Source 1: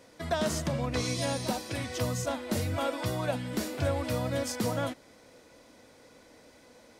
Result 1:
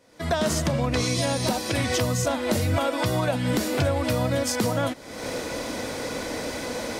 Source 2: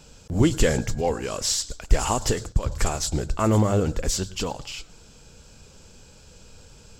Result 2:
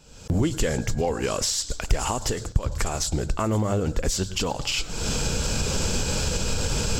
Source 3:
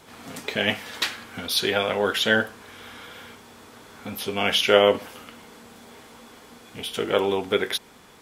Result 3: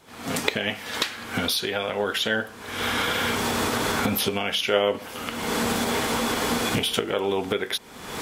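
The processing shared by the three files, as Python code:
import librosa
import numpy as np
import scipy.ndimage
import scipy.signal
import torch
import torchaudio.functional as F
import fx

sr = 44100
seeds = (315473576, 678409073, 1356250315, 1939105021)

y = fx.recorder_agc(x, sr, target_db=-10.5, rise_db_per_s=50.0, max_gain_db=30)
y = y * librosa.db_to_amplitude(-5.0)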